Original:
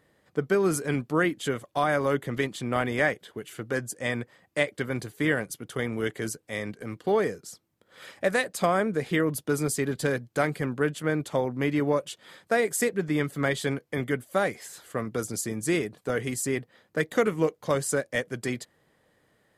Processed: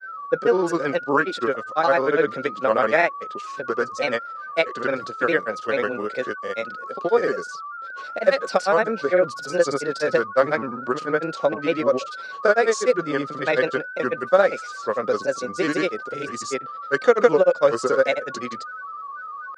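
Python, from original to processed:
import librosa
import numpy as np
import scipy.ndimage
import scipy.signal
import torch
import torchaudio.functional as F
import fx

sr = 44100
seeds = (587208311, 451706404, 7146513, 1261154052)

y = fx.dynamic_eq(x, sr, hz=1700.0, q=1.4, threshold_db=-43.0, ratio=4.0, max_db=6)
y = y + 10.0 ** (-35.0 / 20.0) * np.sin(2.0 * np.pi * 1300.0 * np.arange(len(y)) / sr)
y = fx.granulator(y, sr, seeds[0], grain_ms=100.0, per_s=20.0, spray_ms=100.0, spread_st=3)
y = fx.cabinet(y, sr, low_hz=270.0, low_slope=12, high_hz=6300.0, hz=(310.0, 530.0, 2000.0, 3100.0, 4700.0), db=(-3, 8, -8, -4, 5))
y = F.gain(torch.from_numpy(y), 5.0).numpy()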